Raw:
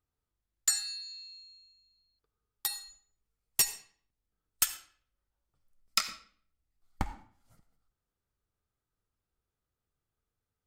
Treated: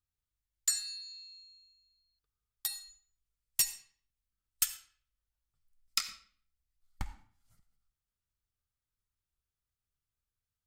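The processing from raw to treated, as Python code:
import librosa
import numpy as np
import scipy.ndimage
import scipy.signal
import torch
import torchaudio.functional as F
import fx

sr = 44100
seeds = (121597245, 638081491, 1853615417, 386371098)

y = fx.peak_eq(x, sr, hz=460.0, db=-12.5, octaves=2.9)
y = y * 10.0 ** (-2.0 / 20.0)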